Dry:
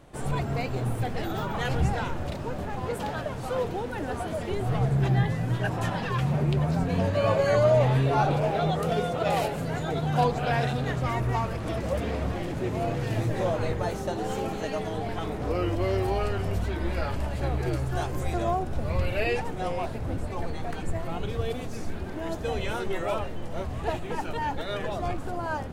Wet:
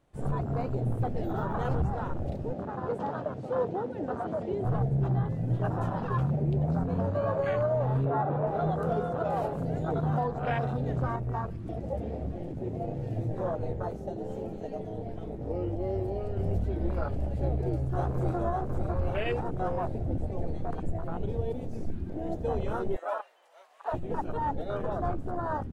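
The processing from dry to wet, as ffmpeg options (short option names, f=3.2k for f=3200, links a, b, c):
-filter_complex "[0:a]asettb=1/sr,asplit=3[a][b][c];[a]atrim=end=2.534[d];[b]atrim=start=2.53:end=4.65,asetpts=PTS-STARTPTS,afade=t=in:d=0.004:c=qsin,afade=t=out:st=2.116:d=0.004:c=qsin,highpass=130,lowpass=7k[e];[c]atrim=start=4.646[f];[d][e]acrossfade=d=0.004:c1=hsin:c2=qsin[g];[g][f]acrossfade=d=0.004:c1=qsin:c2=hsin,asettb=1/sr,asplit=3[h][i][j];[h]atrim=end=8.054[k];[i]atrim=start=8.05:end=8.47,asetpts=PTS-STARTPTS,afade=t=in:d=0.004:c=qsin,afade=t=out:st=0.416:d=0.004:c=qsin,highpass=100,lowpass=2.6k[l];[j]atrim=start=8.466[m];[k][l]acrossfade=d=0.004:c1=hsin:c2=qsin[n];[n][m]acrossfade=d=0.004:c1=qsin:c2=hsin,asettb=1/sr,asplit=3[o][p][q];[o]atrim=end=11.164[r];[p]atrim=start=11.16:end=16.37,asetpts=PTS-STARTPTS,afade=t=in:d=0.004:c=qsin,afade=t=out:st=5.206:d=0.004:c=qsin,flanger=delay=4.7:depth=4.7:regen=-81:speed=1.7:shape=sinusoidal[s];[q]atrim=start=16.366[t];[r][s]acrossfade=d=0.004:c1=hsin:c2=qsin[u];[u][t]acrossfade=d=0.004:c1=qsin:c2=hsin,asplit=2[v][w];[w]afade=t=in:st=17.43:d=0.01,afade=t=out:st=18.39:d=0.01,aecho=0:1:550|1100|1650|2200|2750|3300|3850|4400:0.841395|0.462767|0.254522|0.139987|0.0769929|0.0423461|0.0232904|0.0128097[x];[v][x]amix=inputs=2:normalize=0,asettb=1/sr,asplit=3[y][z][aa];[y]atrim=end=22.964[ab];[z]atrim=start=22.96:end=23.92,asetpts=PTS-STARTPTS,afade=t=in:d=0.004:c=qsin,afade=t=out:st=0.956:d=0.004:c=qsin,highpass=f=630:w=0.5412,highpass=f=630:w=1.3066[ac];[aa]atrim=start=23.916[ad];[ab][ac]acrossfade=d=0.004:c1=hsin:c2=qsin[ae];[ae][ad]acrossfade=d=0.004:c1=qsin:c2=hsin,afwtdn=0.0355,alimiter=limit=-19dB:level=0:latency=1:release=414"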